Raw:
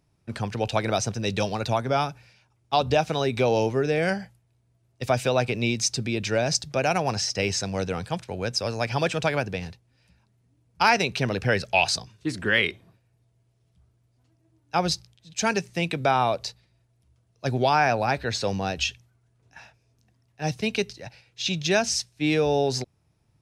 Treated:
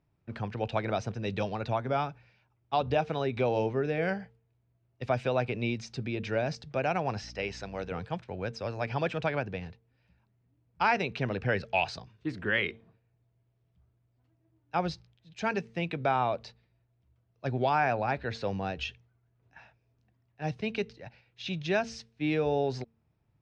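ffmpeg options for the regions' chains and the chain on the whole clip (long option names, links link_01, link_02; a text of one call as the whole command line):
ffmpeg -i in.wav -filter_complex "[0:a]asettb=1/sr,asplit=3[link_01][link_02][link_03];[link_01]atrim=end=7.234[link_04];[link_02]atrim=start=7.23:end=7.92,asetpts=PTS-STARTPTS,afade=type=in:duration=0.004:curve=qsin,afade=type=out:start_time=0.686:duration=0.004:curve=qsin,lowshelf=frequency=230:gain=-11.5,aeval=exprs='val(0)+0.00708*(sin(2*PI*60*n/s)+sin(2*PI*2*60*n/s)/2+sin(2*PI*3*60*n/s)/3+sin(2*PI*4*60*n/s)/4+sin(2*PI*5*60*n/s)/5)':channel_layout=same[link_05];[link_03]atrim=start=7.916[link_06];[link_04][link_05]acrossfade=duration=0.004:curve1=hsin:curve2=qsin[link_07];[link_07][link_06]acrossfade=duration=0.004:curve1=qsin:curve2=hsin,bandreject=frequency=226.8:width_type=h:width=4,bandreject=frequency=453.6:width_type=h:width=4,deesser=0.45,lowpass=2800,volume=-5.5dB" out.wav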